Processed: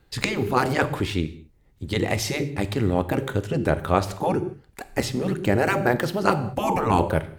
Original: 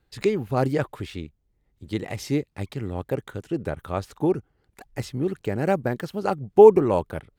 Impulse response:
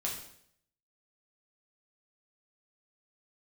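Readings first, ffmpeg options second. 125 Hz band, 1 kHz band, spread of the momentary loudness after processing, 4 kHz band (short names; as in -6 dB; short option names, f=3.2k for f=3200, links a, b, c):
+4.0 dB, +4.0 dB, 7 LU, +9.5 dB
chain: -filter_complex "[0:a]asplit=2[a][b];[1:a]atrim=start_sample=2205,afade=t=out:st=0.24:d=0.01,atrim=end_sample=11025,asetrate=36603,aresample=44100[c];[b][c]afir=irnorm=-1:irlink=0,volume=-12.5dB[d];[a][d]amix=inputs=2:normalize=0,afftfilt=real='re*lt(hypot(re,im),0.398)':imag='im*lt(hypot(re,im),0.398)':win_size=1024:overlap=0.75,volume=7.5dB"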